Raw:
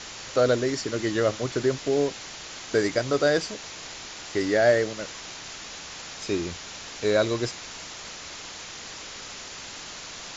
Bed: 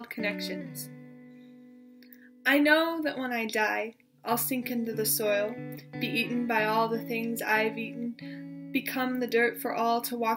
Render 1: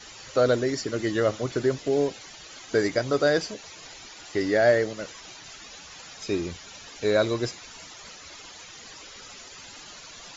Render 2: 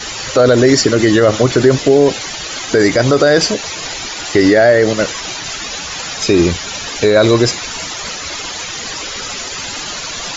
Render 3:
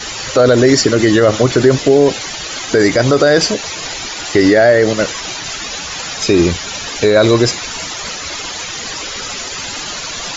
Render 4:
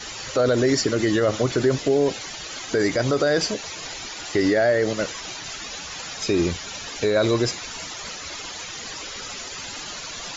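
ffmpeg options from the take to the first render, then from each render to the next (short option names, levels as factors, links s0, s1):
-af "afftdn=nr=12:nf=-40"
-af "alimiter=level_in=10:limit=0.891:release=50:level=0:latency=1"
-af anull
-af "volume=0.316"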